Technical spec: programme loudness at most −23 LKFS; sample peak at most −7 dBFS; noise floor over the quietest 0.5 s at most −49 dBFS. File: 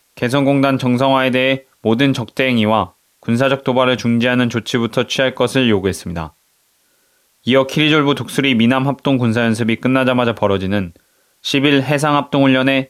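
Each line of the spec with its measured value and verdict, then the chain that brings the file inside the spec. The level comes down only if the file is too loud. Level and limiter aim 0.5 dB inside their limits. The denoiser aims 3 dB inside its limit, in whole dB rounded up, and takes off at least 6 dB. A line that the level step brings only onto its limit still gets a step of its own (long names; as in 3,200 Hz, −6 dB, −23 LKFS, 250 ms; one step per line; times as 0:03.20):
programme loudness −15.5 LKFS: out of spec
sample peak −1.5 dBFS: out of spec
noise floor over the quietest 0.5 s −60 dBFS: in spec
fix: level −8 dB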